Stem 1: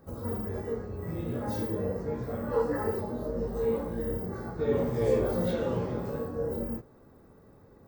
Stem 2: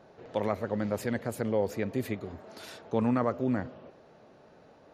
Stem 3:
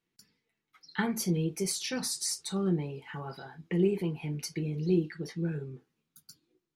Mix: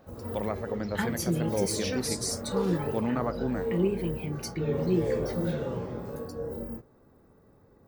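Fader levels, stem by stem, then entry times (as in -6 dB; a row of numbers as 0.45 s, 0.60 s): -3.5 dB, -2.5 dB, 0.0 dB; 0.00 s, 0.00 s, 0.00 s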